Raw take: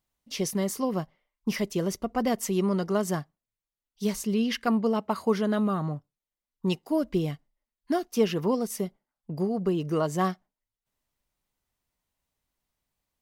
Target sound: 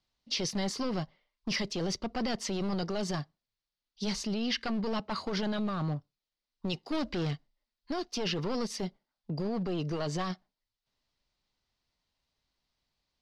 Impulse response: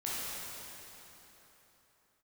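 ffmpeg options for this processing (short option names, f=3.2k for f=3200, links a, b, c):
-filter_complex "[0:a]acrossover=split=140|1500[a][b][c];[b]aeval=exprs='clip(val(0),-1,0.0237)':c=same[d];[a][d][c]amix=inputs=3:normalize=0,alimiter=level_in=1dB:limit=-24dB:level=0:latency=1:release=12,volume=-1dB,asettb=1/sr,asplit=3[e][f][g];[e]atrim=end=6.924[h];[f]atrim=start=6.92:end=7.33,asetpts=PTS-STARTPTS,afade=t=in:d=0.004:c=qsin,afade=t=out:st=0.406:d=0.004:c=qsin,aeval=exprs='0.0562*(cos(1*acos(clip(val(0)/0.0562,-1,1)))-cos(1*PI/2))+0.00794*(cos(5*acos(clip(val(0)/0.0562,-1,1)))-cos(5*PI/2))':c=same[i];[g]atrim=start=7.326[j];[h][i]acrossfade=d=0.004:c1=hsin:c2=qsin[k];[k][j]acrossfade=d=0.004:c1=qsin:c2=hsin,lowpass=f=4.6k:t=q:w=2.7"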